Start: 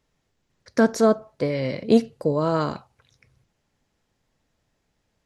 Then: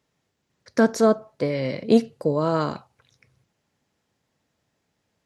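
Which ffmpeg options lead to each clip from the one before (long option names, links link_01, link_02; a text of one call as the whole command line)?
ffmpeg -i in.wav -af "highpass=93" out.wav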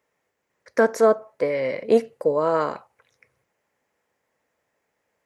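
ffmpeg -i in.wav -af "equalizer=frequency=125:width_type=o:width=1:gain=-4,equalizer=frequency=500:width_type=o:width=1:gain=11,equalizer=frequency=1000:width_type=o:width=1:gain=7,equalizer=frequency=2000:width_type=o:width=1:gain=11,equalizer=frequency=4000:width_type=o:width=1:gain=-5,crystalizer=i=1.5:c=0,volume=-8.5dB" out.wav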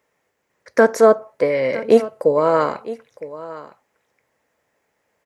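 ffmpeg -i in.wav -af "aecho=1:1:960:0.15,volume=5dB" out.wav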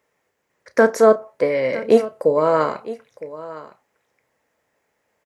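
ffmpeg -i in.wav -filter_complex "[0:a]asplit=2[link_01][link_02];[link_02]adelay=32,volume=-13.5dB[link_03];[link_01][link_03]amix=inputs=2:normalize=0,volume=-1dB" out.wav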